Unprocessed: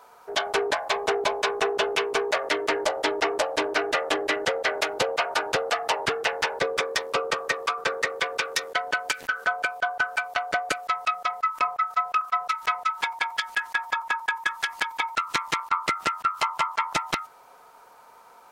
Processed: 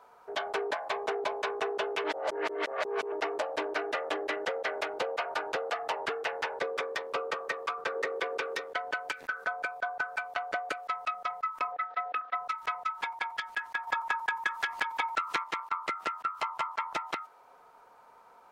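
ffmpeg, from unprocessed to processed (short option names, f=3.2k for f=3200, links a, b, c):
-filter_complex "[0:a]asettb=1/sr,asplit=3[a][b][c];[a]atrim=end=7.954[d];[b]atrim=start=7.95:end=8.61,asetpts=PTS-STARTPTS,afade=t=in:d=0.004:c=qsin,afade=t=out:st=0.656:d=0.004:c=qsin,equalizer=f=370:t=o:w=1:g=8.5[e];[c]atrim=start=8.606[f];[d][e]acrossfade=d=0.004:c1=hsin:c2=qsin[g];[g][f]acrossfade=d=0.004:c1=qsin:c2=hsin,asettb=1/sr,asplit=3[h][i][j];[h]atrim=end=9.164[k];[i]atrim=start=9.16:end=10.18,asetpts=PTS-STARTPTS,afade=t=in:d=0.004:c=qsin,afade=t=out:st=1.016:d=0.004:c=qsin,bandreject=f=3k:w=9.5[l];[j]atrim=start=10.176[m];[k][l]acrossfade=d=0.004:c1=hsin:c2=qsin[n];[n][m]acrossfade=d=0.004:c1=qsin:c2=hsin,asettb=1/sr,asplit=3[o][p][q];[o]atrim=end=11.724[r];[p]atrim=start=11.72:end=12.35,asetpts=PTS-STARTPTS,afade=t=in:d=0.004:c=qsin,afade=t=out:st=0.626:d=0.004:c=qsin,highpass=230,equalizer=f=300:t=q:w=4:g=8,equalizer=f=500:t=q:w=4:g=9,equalizer=f=750:t=q:w=4:g=4,equalizer=f=1.1k:t=q:w=4:g=-10,equalizer=f=1.8k:t=q:w=4:g=9,equalizer=f=3.6k:t=q:w=4:g=4,lowpass=f=4.1k:w=0.5412,lowpass=f=4.1k:w=1.3066[s];[q]atrim=start=12.346[t];[r][s]acrossfade=d=0.004:c1=hsin:c2=qsin[u];[u][t]acrossfade=d=0.004:c1=qsin:c2=hsin,asettb=1/sr,asplit=3[v][w][x];[v]atrim=end=13.874[y];[w]atrim=start=13.87:end=15.44,asetpts=PTS-STARTPTS,afade=t=in:d=0.004:c=qsin,afade=t=out:st=1.566:d=0.004:c=qsin,acontrast=87[z];[x]atrim=start=15.436[aa];[y][z]acrossfade=d=0.004:c1=hsin:c2=qsin[ab];[ab][aa]acrossfade=d=0.004:c1=qsin:c2=hsin,asplit=3[ac][ad][ae];[ac]atrim=end=2.042[af];[ad]atrim=start=2.038:end=3.122,asetpts=PTS-STARTPTS,areverse[ag];[ae]atrim=start=3.118[ah];[af][ag]acrossfade=d=0.004:c1=hsin:c2=hsin[ai];[ai][ah]acrossfade=d=0.004:c1=hsin:c2=hsin,highshelf=f=3.5k:g=-10.5,acrossover=split=260|4300[aj][ak][al];[aj]acompressor=threshold=-57dB:ratio=4[am];[ak]acompressor=threshold=-23dB:ratio=4[an];[al]acompressor=threshold=-44dB:ratio=4[ao];[am][an][ao]amix=inputs=3:normalize=0,volume=-4.5dB"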